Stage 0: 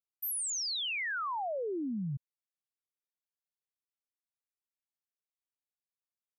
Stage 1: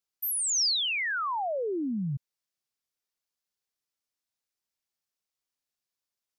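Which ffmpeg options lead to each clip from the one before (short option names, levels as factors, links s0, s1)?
-af "equalizer=f=5200:w=1.5:g=5.5,volume=1.68"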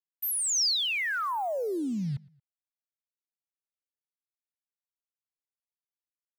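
-filter_complex "[0:a]acrusher=bits=7:mix=0:aa=0.5,asplit=2[s0][s1];[s1]adelay=114,lowpass=f=4100:p=1,volume=0.0668,asplit=2[s2][s3];[s3]adelay=114,lowpass=f=4100:p=1,volume=0.38[s4];[s0][s2][s4]amix=inputs=3:normalize=0"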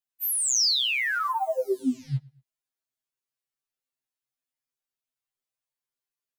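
-af "afftfilt=real='re*2.45*eq(mod(b,6),0)':imag='im*2.45*eq(mod(b,6),0)':win_size=2048:overlap=0.75,volume=1.88"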